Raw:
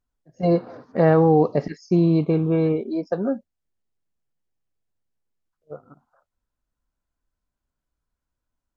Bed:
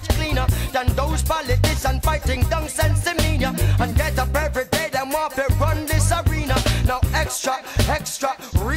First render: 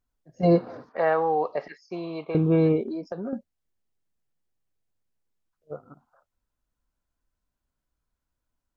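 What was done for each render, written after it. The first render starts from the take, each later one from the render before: 0.89–2.35 s: three-band isolator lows -24 dB, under 550 Hz, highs -19 dB, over 4.1 kHz; 2.88–3.33 s: compression, threshold -29 dBFS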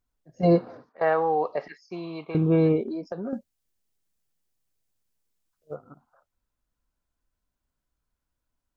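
0.53–1.01 s: fade out, to -20.5 dB; 1.66–2.42 s: peaking EQ 550 Hz -7 dB; 3.30–5.75 s: treble shelf 3.5 kHz +9 dB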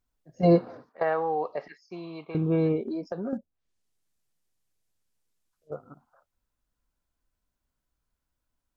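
1.03–2.87 s: gain -4 dB; 3.37–5.72 s: low-pass that closes with the level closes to 660 Hz, closed at -48 dBFS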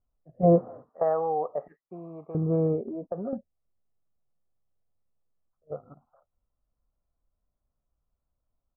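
low-pass 1.1 kHz 24 dB/octave; comb 1.6 ms, depth 36%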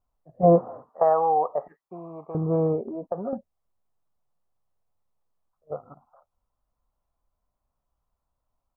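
peaking EQ 950 Hz +11 dB 1 oct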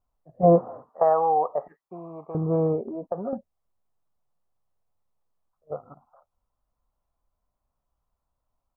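no audible change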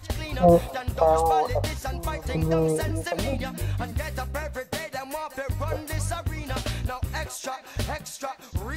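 add bed -10.5 dB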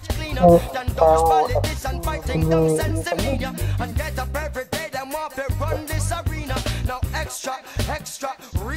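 trim +5 dB; peak limiter -2 dBFS, peak gain reduction 1.5 dB

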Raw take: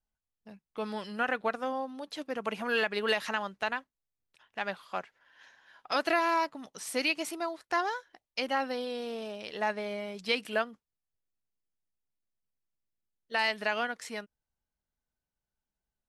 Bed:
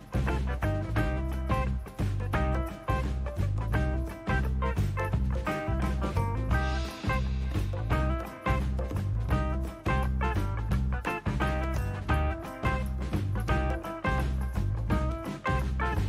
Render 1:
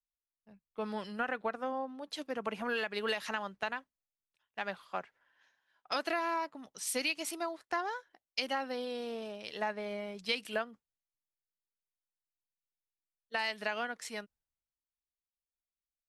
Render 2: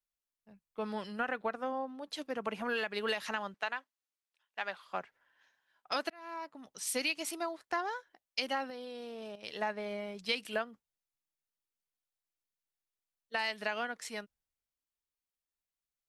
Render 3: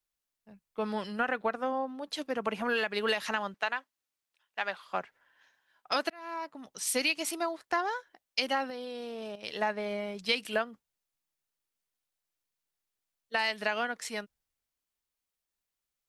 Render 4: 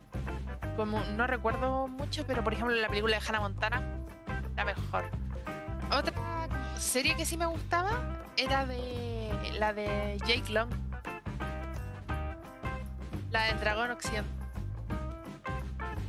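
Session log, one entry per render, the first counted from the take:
compression 4:1, threshold -32 dBFS, peak gain reduction 8.5 dB; three bands expanded up and down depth 70%
3.54–4.86 s: frequency weighting A; 6.10–6.76 s: fade in; 8.70–9.43 s: level held to a coarse grid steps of 11 dB
trim +4.5 dB
add bed -8.5 dB

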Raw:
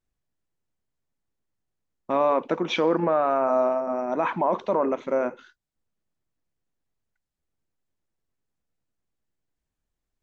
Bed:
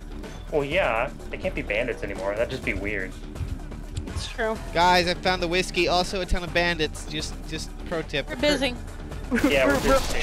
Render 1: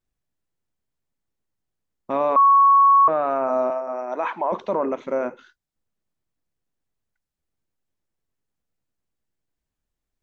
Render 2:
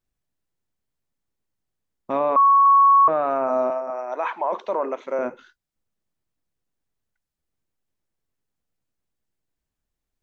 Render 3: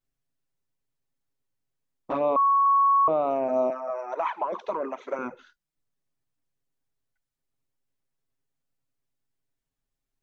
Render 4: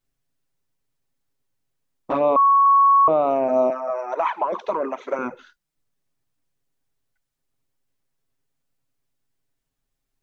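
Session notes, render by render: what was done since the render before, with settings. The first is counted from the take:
2.36–3.08 s: bleep 1.11 kHz -10.5 dBFS; 3.70–4.52 s: high-pass 420 Hz
2.19–2.66 s: distance through air 140 m; 3.90–5.19 s: high-pass 410 Hz
touch-sensitive flanger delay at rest 7.4 ms, full sweep at -17.5 dBFS
trim +5.5 dB

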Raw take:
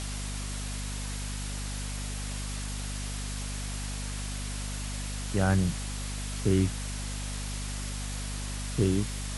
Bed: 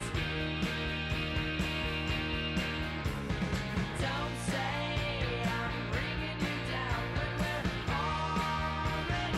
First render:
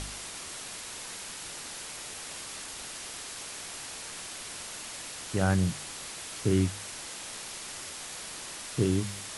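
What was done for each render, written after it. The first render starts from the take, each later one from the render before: de-hum 50 Hz, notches 5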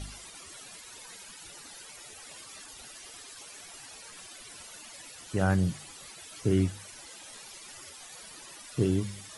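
noise reduction 14 dB, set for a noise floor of -42 dBFS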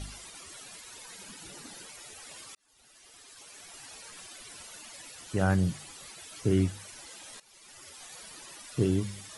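1.18–1.88 s: peaking EQ 220 Hz +10.5 dB 1.9 oct; 2.55–3.91 s: fade in; 7.40–8.04 s: fade in, from -17.5 dB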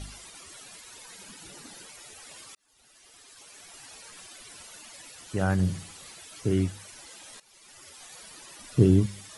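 5.53–6.18 s: flutter echo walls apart 11 m, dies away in 0.43 s; 8.59–9.06 s: bass shelf 450 Hz +9.5 dB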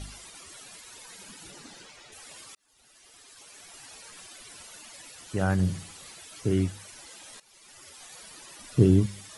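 1.51–2.11 s: low-pass 9.8 kHz -> 4.7 kHz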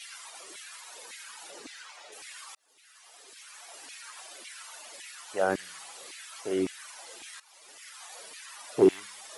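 hard clipper -13 dBFS, distortion -17 dB; LFO high-pass saw down 1.8 Hz 330–2400 Hz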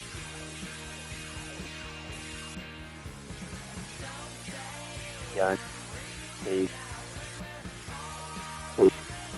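add bed -8.5 dB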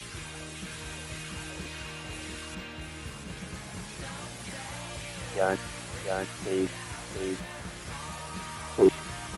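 delay 690 ms -5 dB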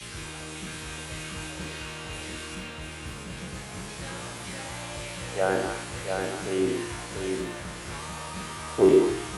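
spectral sustain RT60 0.67 s; repeats whose band climbs or falls 106 ms, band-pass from 410 Hz, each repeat 1.4 oct, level -1.5 dB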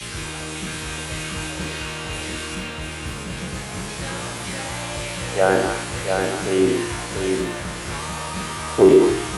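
trim +8 dB; peak limiter -3 dBFS, peak gain reduction 3 dB

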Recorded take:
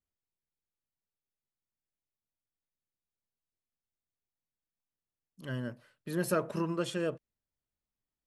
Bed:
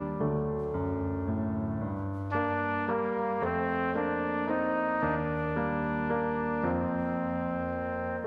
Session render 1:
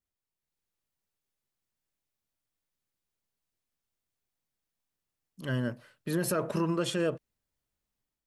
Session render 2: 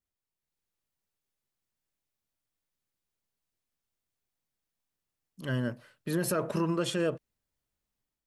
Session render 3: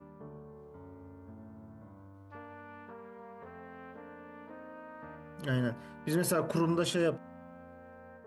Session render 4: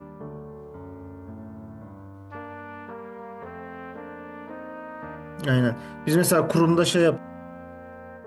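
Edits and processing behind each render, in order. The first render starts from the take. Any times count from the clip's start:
peak limiter -26 dBFS, peak gain reduction 8.5 dB; level rider gain up to 6 dB
no audible change
add bed -19 dB
trim +10 dB

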